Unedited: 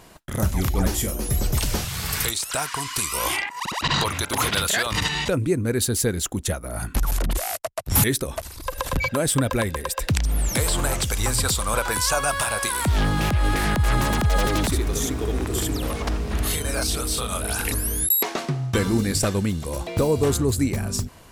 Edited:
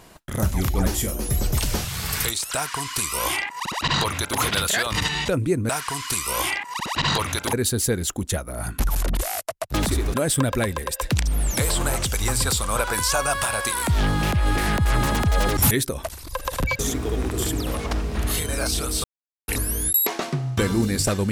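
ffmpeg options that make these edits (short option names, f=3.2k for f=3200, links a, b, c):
-filter_complex "[0:a]asplit=9[a][b][c][d][e][f][g][h][i];[a]atrim=end=5.692[j];[b]atrim=start=2.548:end=4.392[k];[c]atrim=start=5.688:end=7.902[l];[d]atrim=start=14.548:end=14.952[m];[e]atrim=start=9.118:end=14.552[n];[f]atrim=start=7.898:end=9.122[o];[g]atrim=start=14.948:end=17.2,asetpts=PTS-STARTPTS,afade=t=out:st=2.248:d=0.004:c=hsin[p];[h]atrim=start=17.2:end=17.64,asetpts=PTS-STARTPTS,volume=0[q];[i]atrim=start=17.64,asetpts=PTS-STARTPTS,afade=t=in:d=0.004:c=hsin[r];[j][k]acrossfade=d=0.004:c1=hsin:c2=hsin[s];[s][l]acrossfade=d=0.004:c1=hsin:c2=hsin[t];[t][m]acrossfade=d=0.004:c1=hsin:c2=hsin[u];[u][n]acrossfade=d=0.004:c1=hsin:c2=hsin[v];[v][o]acrossfade=d=0.004:c1=hsin:c2=hsin[w];[p][q][r]concat=n=3:v=0:a=1[x];[w][x]acrossfade=d=0.004:c1=hsin:c2=hsin"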